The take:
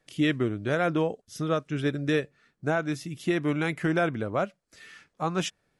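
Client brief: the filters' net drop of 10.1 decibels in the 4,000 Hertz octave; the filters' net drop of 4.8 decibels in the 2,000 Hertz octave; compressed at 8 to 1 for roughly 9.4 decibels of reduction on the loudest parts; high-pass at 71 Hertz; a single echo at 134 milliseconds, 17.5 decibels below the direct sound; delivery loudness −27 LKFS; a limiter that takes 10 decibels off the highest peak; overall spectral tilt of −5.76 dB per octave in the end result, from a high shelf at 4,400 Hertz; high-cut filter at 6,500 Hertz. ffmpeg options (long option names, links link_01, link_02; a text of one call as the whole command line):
ffmpeg -i in.wav -af "highpass=71,lowpass=6500,equalizer=frequency=2000:width_type=o:gain=-3.5,equalizer=frequency=4000:width_type=o:gain=-7.5,highshelf=frequency=4400:gain=-8.5,acompressor=threshold=-31dB:ratio=8,alimiter=level_in=6dB:limit=-24dB:level=0:latency=1,volume=-6dB,aecho=1:1:134:0.133,volume=13dB" out.wav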